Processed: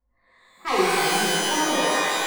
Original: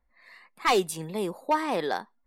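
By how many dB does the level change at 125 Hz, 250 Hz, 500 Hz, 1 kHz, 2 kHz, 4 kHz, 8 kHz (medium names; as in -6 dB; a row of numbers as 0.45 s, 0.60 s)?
+3.5 dB, +5.0 dB, +3.5 dB, +5.0 dB, +10.0 dB, +12.0 dB, +13.5 dB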